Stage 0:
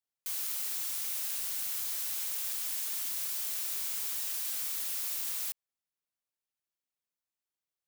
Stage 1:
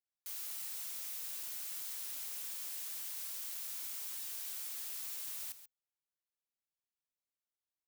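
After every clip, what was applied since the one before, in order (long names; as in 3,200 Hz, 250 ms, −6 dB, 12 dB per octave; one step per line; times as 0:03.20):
frequency shifter −40 Hz
single-tap delay 136 ms −12.5 dB
level −8 dB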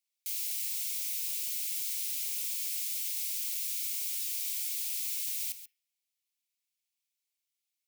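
elliptic high-pass filter 2,200 Hz, stop band 70 dB
on a send at −10.5 dB: convolution reverb RT60 0.50 s, pre-delay 3 ms
on the sum: level +9 dB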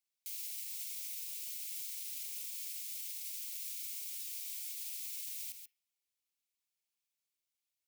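brickwall limiter −29.5 dBFS, peak gain reduction 7.5 dB
level −3.5 dB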